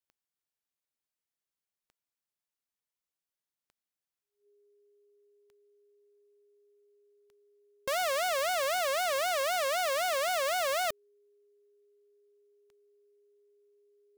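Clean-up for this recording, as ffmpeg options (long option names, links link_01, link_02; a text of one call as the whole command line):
ffmpeg -i in.wav -af "adeclick=threshold=4,bandreject=frequency=410:width=30" out.wav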